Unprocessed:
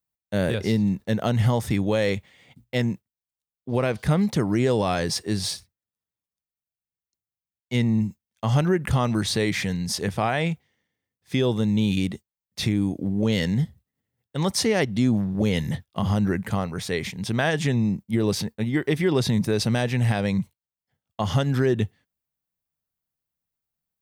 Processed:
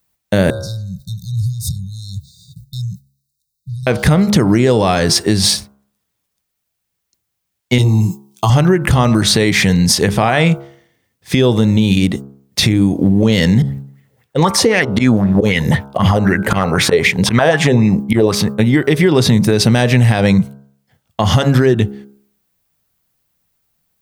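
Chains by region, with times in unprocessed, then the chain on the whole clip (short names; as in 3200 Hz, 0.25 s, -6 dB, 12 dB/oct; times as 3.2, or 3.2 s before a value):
0.5–3.87 compressor 10:1, threshold -33 dBFS + brick-wall FIR band-stop 180–3600 Hz
7.78–8.5 high shelf 4100 Hz +9 dB + fixed phaser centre 360 Hz, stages 8 + doubler 17 ms -7 dB
13.62–18.35 auto swell 0.1 s + LFO bell 3.9 Hz 440–2400 Hz +14 dB
whole clip: de-hum 68.62 Hz, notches 23; compressor, threshold -27 dBFS; maximiser +20 dB; gain -1 dB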